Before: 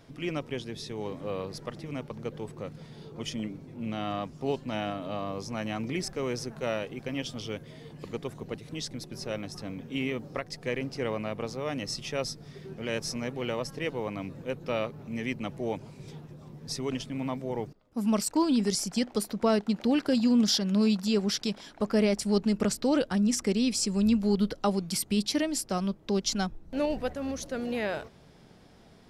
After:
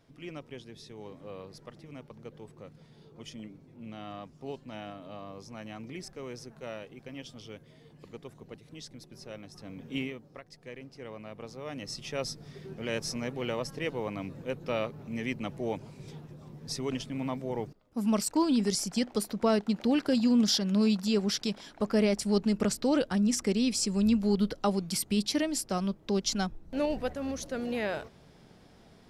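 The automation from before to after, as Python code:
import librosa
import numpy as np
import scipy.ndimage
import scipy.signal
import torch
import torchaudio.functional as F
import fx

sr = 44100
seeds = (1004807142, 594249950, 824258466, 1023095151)

y = fx.gain(x, sr, db=fx.line((9.52, -9.5), (9.98, -1.0), (10.21, -13.0), (10.98, -13.0), (12.34, -1.0)))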